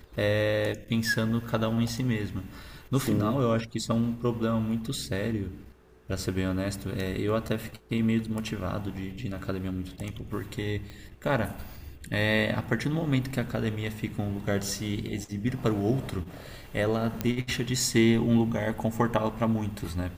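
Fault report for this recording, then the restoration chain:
10.90 s: pop -28 dBFS
17.21 s: pop -13 dBFS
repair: de-click

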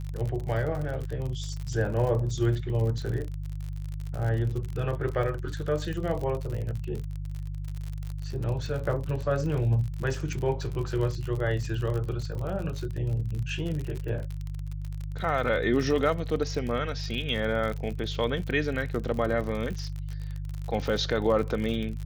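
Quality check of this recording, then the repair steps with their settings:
crackle 51 per s -32 dBFS
hum 50 Hz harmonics 3 -34 dBFS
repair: de-click; de-hum 50 Hz, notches 3

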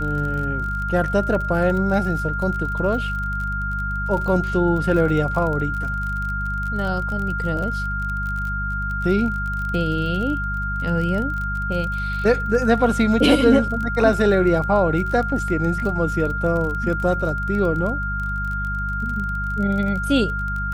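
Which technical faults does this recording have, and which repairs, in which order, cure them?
crackle 30 per s -27 dBFS
hum 50 Hz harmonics 4 -27 dBFS
whine 1.4 kHz -25 dBFS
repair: de-click; de-hum 50 Hz, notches 4; band-stop 1.4 kHz, Q 30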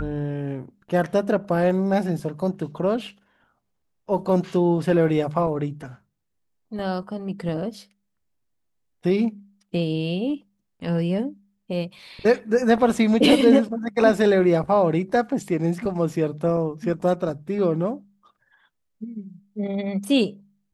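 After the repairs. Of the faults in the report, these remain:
nothing left

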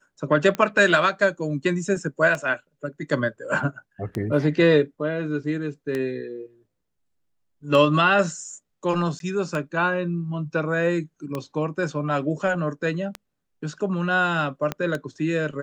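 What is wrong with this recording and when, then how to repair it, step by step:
tick 33 1/3 rpm -14 dBFS
9.19–9.20 s: dropout 12 ms
14.72 s: pop -12 dBFS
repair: de-click; interpolate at 9.19 s, 12 ms

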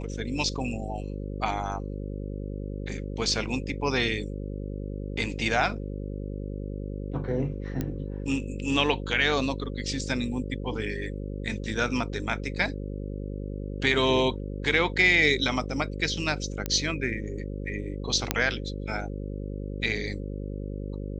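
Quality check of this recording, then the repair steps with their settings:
buzz 50 Hz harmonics 11 -34 dBFS
7.81 s: pop -16 dBFS
16.66 s: pop -13 dBFS
18.31 s: pop -5 dBFS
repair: de-click; de-hum 50 Hz, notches 11

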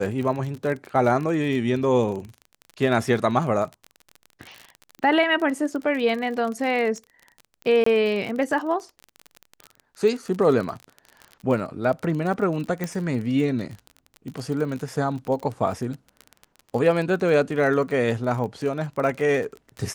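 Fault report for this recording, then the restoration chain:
crackle 33 per s -29 dBFS
7.84–7.86 s: dropout 24 ms
12.84 s: pop -14 dBFS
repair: de-click; interpolate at 7.84 s, 24 ms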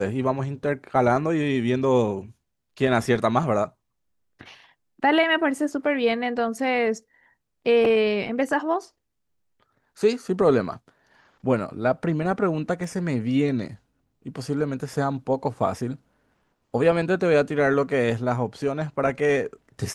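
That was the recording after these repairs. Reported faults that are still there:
12.84 s: pop

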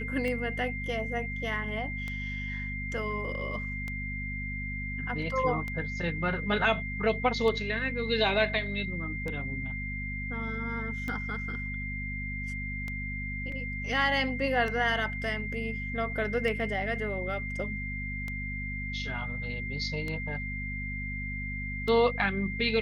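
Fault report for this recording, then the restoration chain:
hum 50 Hz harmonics 5 -37 dBFS
tick 33 1/3 rpm -22 dBFS
whine 2.1 kHz -36 dBFS
13.52 s: dropout 2.9 ms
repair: de-click; de-hum 50 Hz, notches 5; band-stop 2.1 kHz, Q 30; interpolate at 13.52 s, 2.9 ms

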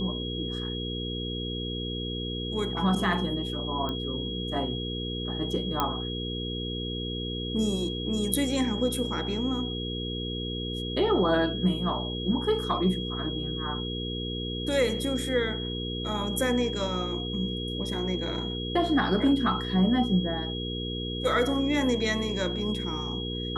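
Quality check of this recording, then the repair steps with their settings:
hum 60 Hz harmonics 8 -34 dBFS
whine 3.3 kHz -35 dBFS
3.89 s: pop -20 dBFS
5.80 s: pop -11 dBFS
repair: de-click; band-stop 3.3 kHz, Q 30; de-hum 60 Hz, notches 8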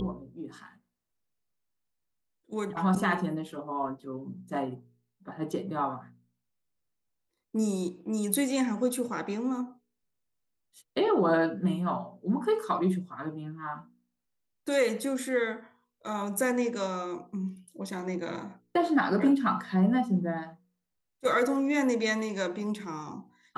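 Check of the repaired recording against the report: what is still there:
nothing left

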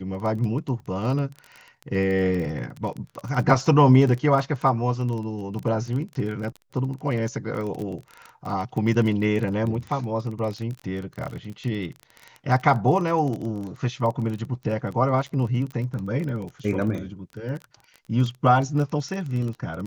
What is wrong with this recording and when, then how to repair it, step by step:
crackle 22 per s -29 dBFS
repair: de-click

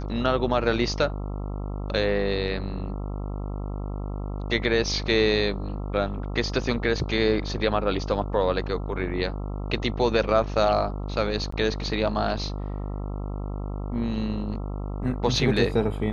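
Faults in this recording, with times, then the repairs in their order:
buzz 50 Hz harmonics 27 -31 dBFS
11.51–11.52 s: dropout 14 ms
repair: de-hum 50 Hz, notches 27; interpolate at 11.51 s, 14 ms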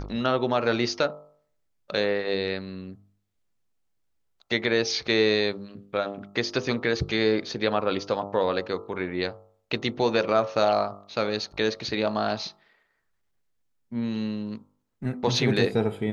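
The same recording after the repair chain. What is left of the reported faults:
nothing left

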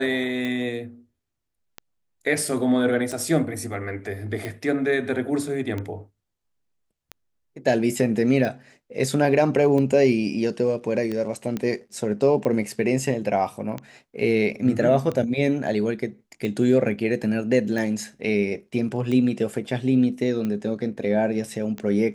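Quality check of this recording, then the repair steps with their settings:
tick 45 rpm -17 dBFS
11.57 s: pop -15 dBFS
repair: de-click

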